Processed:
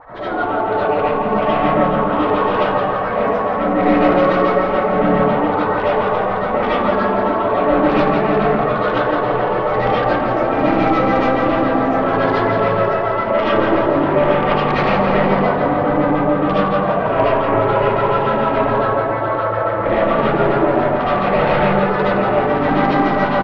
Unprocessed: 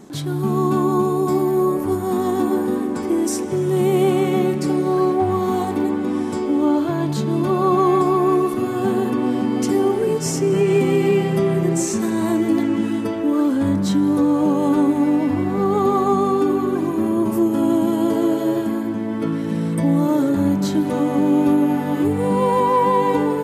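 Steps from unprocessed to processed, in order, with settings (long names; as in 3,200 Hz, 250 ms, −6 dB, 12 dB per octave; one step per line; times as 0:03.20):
gate on every frequency bin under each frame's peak −15 dB weak
mains-hum notches 50/100/150 Hz
reversed playback
upward compression, threshold −33 dBFS
reversed playback
Gaussian smoothing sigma 2.2 samples
auto-filter low-pass sine 7.1 Hz 280–1,700 Hz
sine wavefolder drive 11 dB, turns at −12.5 dBFS
repeating echo 169 ms, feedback 55%, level −7.5 dB
comb and all-pass reverb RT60 0.58 s, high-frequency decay 0.35×, pre-delay 35 ms, DRR −9 dB
level −8.5 dB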